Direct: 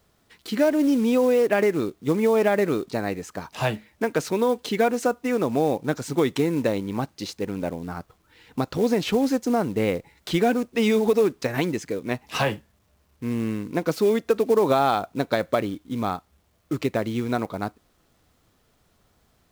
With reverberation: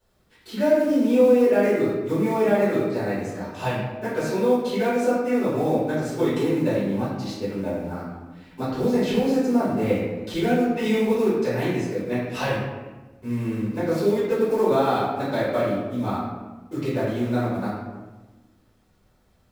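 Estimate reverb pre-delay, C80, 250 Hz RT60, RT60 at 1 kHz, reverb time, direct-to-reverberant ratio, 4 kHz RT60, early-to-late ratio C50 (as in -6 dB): 3 ms, 2.0 dB, 1.6 s, 1.1 s, 1.2 s, -13.0 dB, 0.75 s, 0.0 dB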